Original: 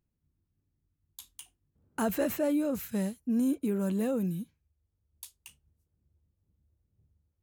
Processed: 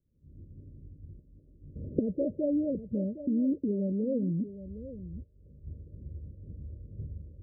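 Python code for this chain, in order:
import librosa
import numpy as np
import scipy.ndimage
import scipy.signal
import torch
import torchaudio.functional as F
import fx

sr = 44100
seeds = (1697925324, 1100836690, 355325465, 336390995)

p1 = fx.recorder_agc(x, sr, target_db=-24.5, rise_db_per_s=80.0, max_gain_db=30)
p2 = scipy.signal.sosfilt(scipy.signal.cheby1(10, 1.0, 610.0, 'lowpass', fs=sr, output='sos'), p1)
y = p2 + fx.echo_single(p2, sr, ms=763, db=-13.0, dry=0)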